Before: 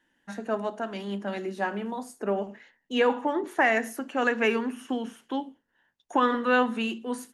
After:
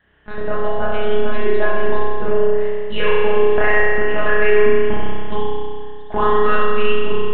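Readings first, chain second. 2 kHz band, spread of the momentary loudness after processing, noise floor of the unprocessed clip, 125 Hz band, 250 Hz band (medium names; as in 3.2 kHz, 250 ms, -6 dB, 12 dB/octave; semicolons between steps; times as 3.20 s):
+8.0 dB, 11 LU, -75 dBFS, no reading, +1.0 dB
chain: monotone LPC vocoder at 8 kHz 210 Hz; compression 4:1, threshold -28 dBFS, peak gain reduction 11 dB; spring tank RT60 2.1 s, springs 31 ms, chirp 55 ms, DRR -7 dB; trim +8.5 dB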